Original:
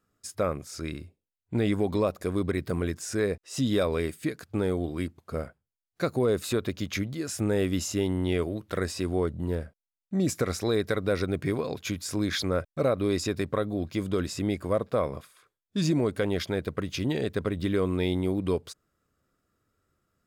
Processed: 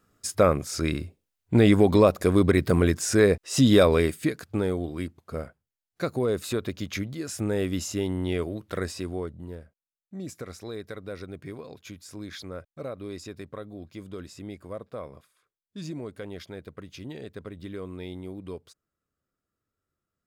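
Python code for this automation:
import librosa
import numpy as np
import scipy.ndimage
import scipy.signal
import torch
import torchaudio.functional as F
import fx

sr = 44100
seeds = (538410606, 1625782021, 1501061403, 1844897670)

y = fx.gain(x, sr, db=fx.line((3.84, 8.0), (4.86, -1.0), (8.86, -1.0), (9.61, -11.0)))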